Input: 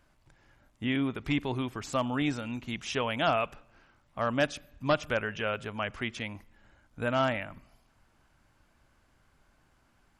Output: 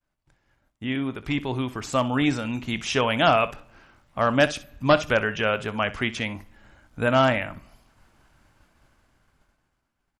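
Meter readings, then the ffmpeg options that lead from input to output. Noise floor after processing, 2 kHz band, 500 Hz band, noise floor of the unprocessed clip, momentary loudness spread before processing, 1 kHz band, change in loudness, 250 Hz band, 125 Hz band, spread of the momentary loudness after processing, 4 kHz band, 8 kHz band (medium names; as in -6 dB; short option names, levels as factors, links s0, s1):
-78 dBFS, +7.5 dB, +8.0 dB, -68 dBFS, 9 LU, +8.0 dB, +7.5 dB, +6.0 dB, +7.0 dB, 10 LU, +7.5 dB, +7.5 dB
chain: -af "dynaudnorm=f=680:g=5:m=2.51,aecho=1:1:23|63:0.141|0.15,agate=range=0.0224:threshold=0.00158:ratio=3:detection=peak"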